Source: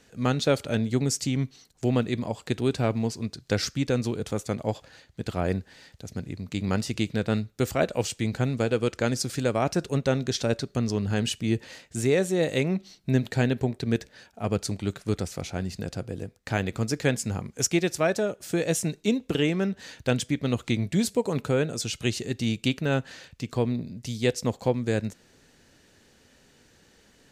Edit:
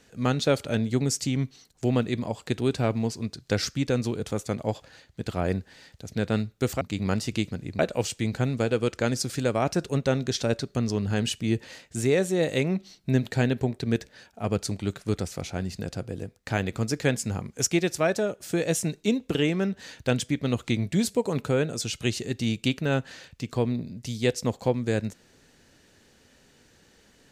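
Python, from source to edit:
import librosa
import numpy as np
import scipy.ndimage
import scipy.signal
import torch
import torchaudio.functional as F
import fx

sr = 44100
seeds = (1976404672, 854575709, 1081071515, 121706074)

y = fx.edit(x, sr, fx.swap(start_s=6.15, length_s=0.28, other_s=7.13, other_length_s=0.66), tone=tone)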